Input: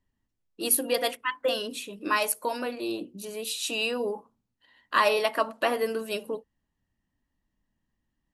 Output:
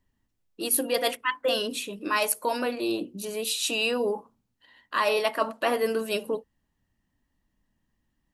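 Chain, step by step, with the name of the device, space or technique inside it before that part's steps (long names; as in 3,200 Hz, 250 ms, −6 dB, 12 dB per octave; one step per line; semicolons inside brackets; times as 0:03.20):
compression on the reversed sound (reversed playback; downward compressor 6 to 1, threshold −25 dBFS, peak gain reduction 8 dB; reversed playback)
level +4 dB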